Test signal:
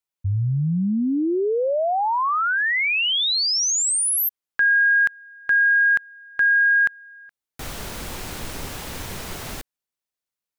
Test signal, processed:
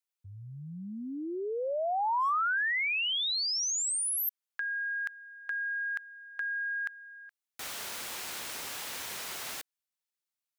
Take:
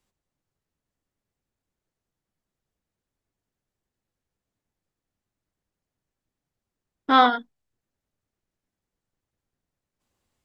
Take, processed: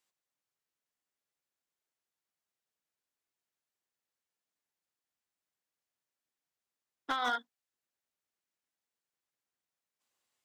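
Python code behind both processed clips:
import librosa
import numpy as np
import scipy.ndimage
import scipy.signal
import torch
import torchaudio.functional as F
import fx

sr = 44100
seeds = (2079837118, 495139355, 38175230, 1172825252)

y = fx.highpass(x, sr, hz=1300.0, slope=6)
y = fx.over_compress(y, sr, threshold_db=-25.0, ratio=-1.0)
y = np.clip(10.0 ** (19.0 / 20.0) * y, -1.0, 1.0) / 10.0 ** (19.0 / 20.0)
y = y * librosa.db_to_amplitude(-6.0)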